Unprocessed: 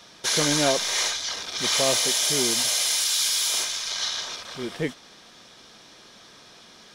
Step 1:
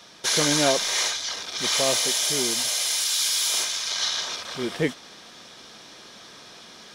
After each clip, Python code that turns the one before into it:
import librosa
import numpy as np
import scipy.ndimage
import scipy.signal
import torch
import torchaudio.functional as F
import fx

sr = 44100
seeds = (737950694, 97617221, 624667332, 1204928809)

y = fx.low_shelf(x, sr, hz=76.0, db=-7.0)
y = fx.rider(y, sr, range_db=4, speed_s=2.0)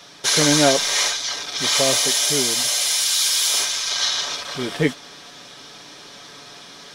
y = x + 0.5 * np.pad(x, (int(7.0 * sr / 1000.0), 0))[:len(x)]
y = y * librosa.db_to_amplitude(3.5)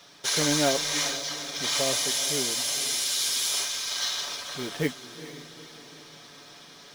y = fx.quant_float(x, sr, bits=2)
y = fx.echo_diffused(y, sr, ms=451, feedback_pct=50, wet_db=-13)
y = y * librosa.db_to_amplitude(-8.0)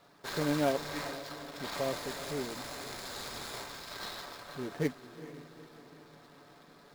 y = scipy.signal.medfilt(x, 15)
y = y * librosa.db_to_amplitude(-3.5)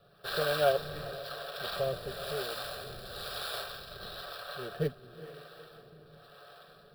y = fx.fixed_phaser(x, sr, hz=1400.0, stages=8)
y = fx.harmonic_tremolo(y, sr, hz=1.0, depth_pct=70, crossover_hz=430.0)
y = y * librosa.db_to_amplitude(8.0)